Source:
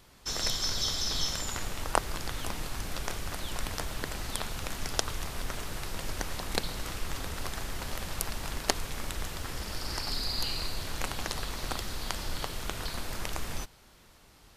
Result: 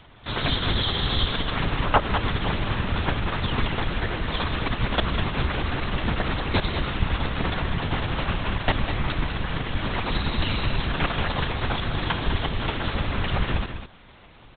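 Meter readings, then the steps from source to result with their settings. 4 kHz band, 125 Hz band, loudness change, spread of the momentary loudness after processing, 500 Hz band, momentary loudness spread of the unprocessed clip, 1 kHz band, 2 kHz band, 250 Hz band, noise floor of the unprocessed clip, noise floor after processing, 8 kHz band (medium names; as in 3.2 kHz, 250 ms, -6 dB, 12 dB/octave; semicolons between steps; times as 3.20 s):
+5.5 dB, +14.0 dB, +8.0 dB, 4 LU, +9.5 dB, 8 LU, +10.0 dB, +10.5 dB, +13.5 dB, -57 dBFS, -49 dBFS, under -40 dB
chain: LPC vocoder at 8 kHz whisper; on a send: delay 199 ms -8.5 dB; on the sum: trim +8.5 dB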